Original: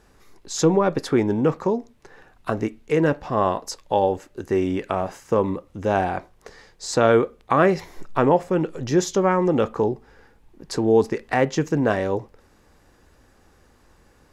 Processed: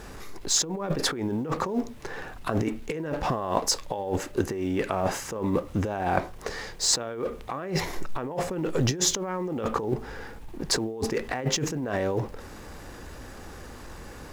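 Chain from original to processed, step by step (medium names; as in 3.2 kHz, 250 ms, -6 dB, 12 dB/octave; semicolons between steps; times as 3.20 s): companding laws mixed up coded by mu; compressor with a negative ratio -28 dBFS, ratio -1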